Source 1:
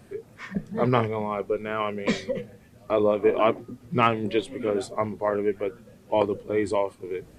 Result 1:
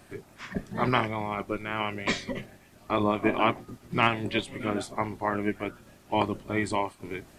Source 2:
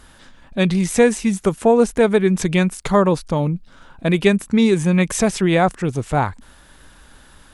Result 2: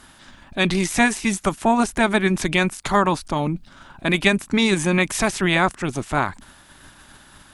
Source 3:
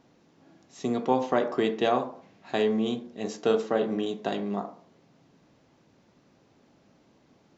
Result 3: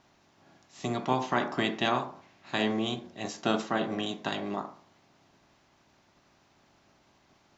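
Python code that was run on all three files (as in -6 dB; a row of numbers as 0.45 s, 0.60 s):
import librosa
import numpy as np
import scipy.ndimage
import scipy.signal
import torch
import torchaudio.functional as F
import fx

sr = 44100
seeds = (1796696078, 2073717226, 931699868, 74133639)

y = fx.spec_clip(x, sr, under_db=13)
y = fx.peak_eq(y, sr, hz=480.0, db=-14.0, octaves=0.2)
y = y * librosa.db_to_amplitude(-2.0)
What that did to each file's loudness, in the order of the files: -3.0 LU, -2.5 LU, -3.0 LU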